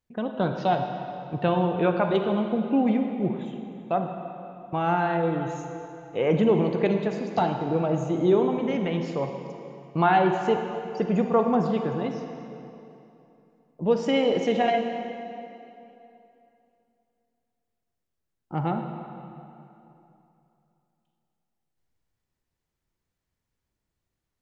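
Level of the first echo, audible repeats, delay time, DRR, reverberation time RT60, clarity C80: no echo, no echo, no echo, 4.5 dB, 2.9 s, 6.0 dB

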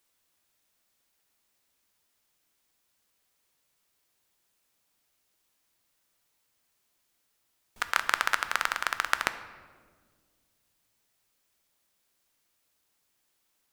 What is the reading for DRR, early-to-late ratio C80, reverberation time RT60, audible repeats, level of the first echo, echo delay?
10.0 dB, 14.0 dB, 1.7 s, no echo, no echo, no echo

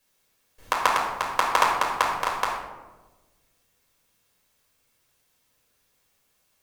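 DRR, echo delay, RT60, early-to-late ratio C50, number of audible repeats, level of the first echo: -4.0 dB, no echo, 1.2 s, 3.0 dB, no echo, no echo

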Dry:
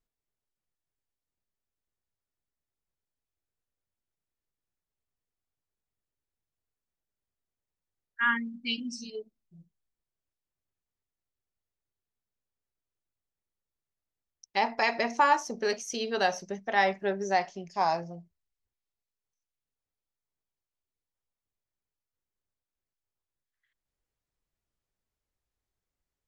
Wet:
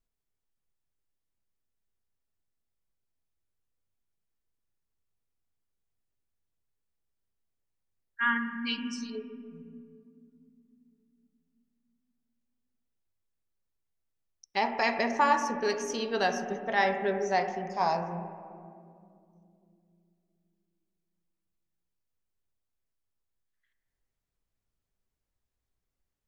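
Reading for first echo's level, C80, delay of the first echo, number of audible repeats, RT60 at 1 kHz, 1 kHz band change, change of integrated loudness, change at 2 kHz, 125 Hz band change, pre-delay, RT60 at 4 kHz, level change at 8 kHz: no echo, 13.0 dB, no echo, no echo, 2.1 s, -0.5 dB, -0.5 dB, -0.5 dB, +2.5 dB, 4 ms, 1.2 s, -1.5 dB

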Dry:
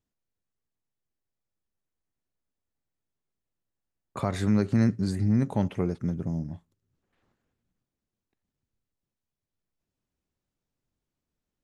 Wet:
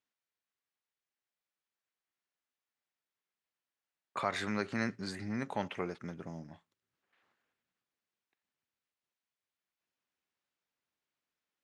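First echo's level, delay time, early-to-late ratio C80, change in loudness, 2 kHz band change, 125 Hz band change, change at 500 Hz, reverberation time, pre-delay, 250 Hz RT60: no echo, no echo, no reverb, -10.5 dB, +3.0 dB, -18.0 dB, -6.5 dB, no reverb, no reverb, no reverb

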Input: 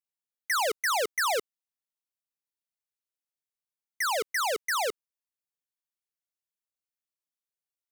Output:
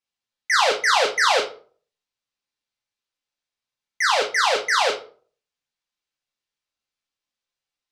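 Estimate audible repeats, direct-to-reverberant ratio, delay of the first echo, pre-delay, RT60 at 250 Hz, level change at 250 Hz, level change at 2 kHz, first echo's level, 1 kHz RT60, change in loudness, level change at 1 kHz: no echo, -2.0 dB, no echo, 4 ms, 0.50 s, +6.5 dB, +9.5 dB, no echo, 0.40 s, +8.5 dB, +9.0 dB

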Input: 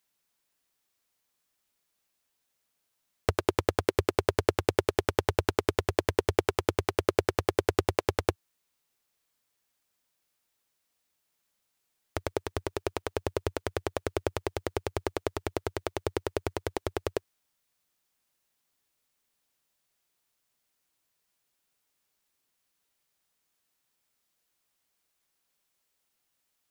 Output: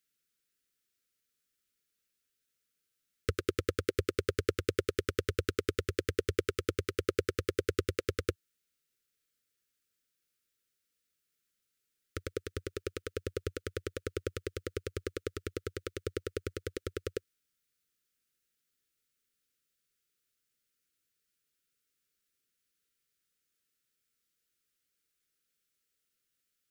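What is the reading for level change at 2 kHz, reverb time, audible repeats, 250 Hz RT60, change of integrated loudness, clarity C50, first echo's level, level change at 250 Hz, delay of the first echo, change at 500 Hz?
-5.0 dB, no reverb, no echo, no reverb, -5.5 dB, no reverb, no echo, -5.0 dB, no echo, -5.5 dB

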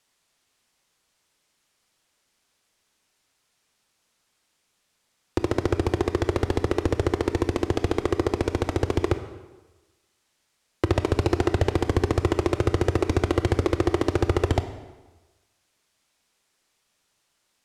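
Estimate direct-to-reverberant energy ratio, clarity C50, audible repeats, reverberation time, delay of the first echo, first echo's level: 9.5 dB, 11.0 dB, no echo, 1.2 s, no echo, no echo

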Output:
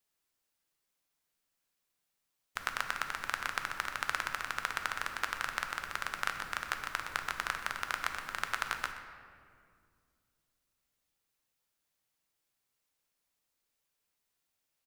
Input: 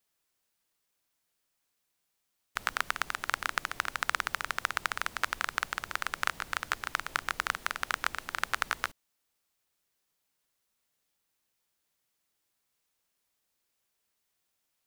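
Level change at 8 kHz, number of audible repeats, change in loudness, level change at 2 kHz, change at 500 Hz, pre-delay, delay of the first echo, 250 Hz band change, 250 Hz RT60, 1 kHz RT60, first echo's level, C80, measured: -3.5 dB, 1, -3.0 dB, -3.0 dB, -3.0 dB, 4 ms, 125 ms, -2.5 dB, 2.9 s, 2.0 s, -15.5 dB, 7.5 dB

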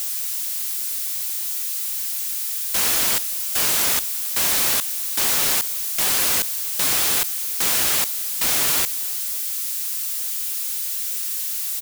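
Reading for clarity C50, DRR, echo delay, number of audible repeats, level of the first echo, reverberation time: no reverb, no reverb, 358 ms, 1, -22.0 dB, no reverb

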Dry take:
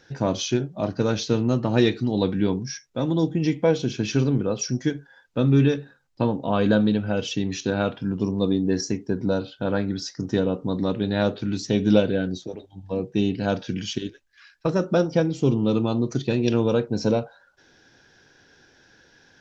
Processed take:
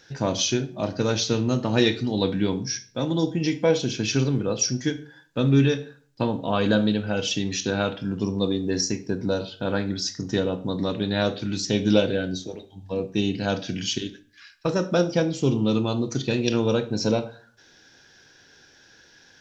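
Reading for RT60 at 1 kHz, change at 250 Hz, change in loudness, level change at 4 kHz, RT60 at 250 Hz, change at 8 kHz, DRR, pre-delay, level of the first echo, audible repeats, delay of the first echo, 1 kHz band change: 0.45 s, -1.5 dB, -0.5 dB, +5.0 dB, 0.60 s, no reading, 11.0 dB, 20 ms, no echo, no echo, no echo, -0.5 dB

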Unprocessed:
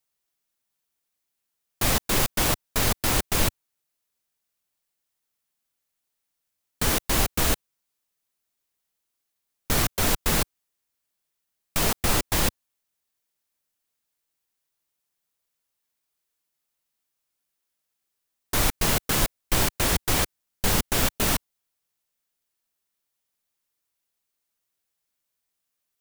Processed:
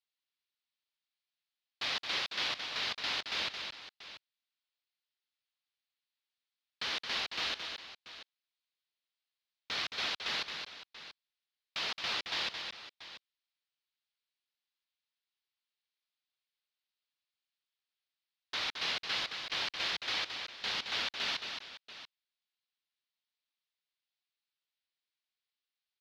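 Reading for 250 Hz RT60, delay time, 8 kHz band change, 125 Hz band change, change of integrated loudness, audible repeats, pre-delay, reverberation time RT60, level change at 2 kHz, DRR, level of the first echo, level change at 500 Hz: no reverb, 220 ms, -22.5 dB, -30.0 dB, -11.0 dB, 2, no reverb, no reverb, -6.5 dB, no reverb, -6.0 dB, -17.5 dB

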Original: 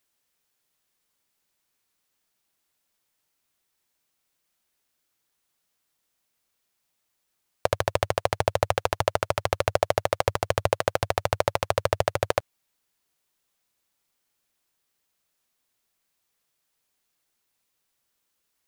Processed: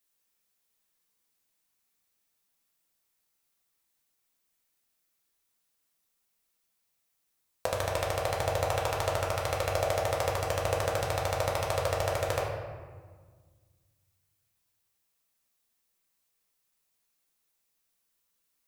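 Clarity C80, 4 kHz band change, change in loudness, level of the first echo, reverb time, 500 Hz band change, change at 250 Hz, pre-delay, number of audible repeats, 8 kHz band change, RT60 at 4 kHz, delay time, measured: 4.5 dB, -3.5 dB, -4.0 dB, no echo, 1.6 s, -4.0 dB, -4.5 dB, 4 ms, no echo, -1.5 dB, 0.90 s, no echo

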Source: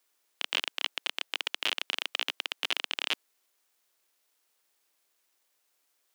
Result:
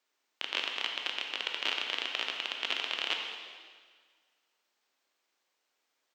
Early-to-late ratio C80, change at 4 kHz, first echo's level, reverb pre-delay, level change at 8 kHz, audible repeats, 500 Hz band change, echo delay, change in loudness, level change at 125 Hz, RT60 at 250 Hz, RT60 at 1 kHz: 4.5 dB, -1.0 dB, -14.5 dB, 7 ms, -6.0 dB, 1, +0.5 dB, 213 ms, -1.0 dB, no reading, 1.7 s, 1.7 s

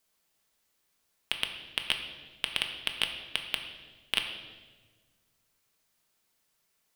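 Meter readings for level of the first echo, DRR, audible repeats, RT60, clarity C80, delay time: no echo, 4.0 dB, no echo, 1.4 s, 9.0 dB, no echo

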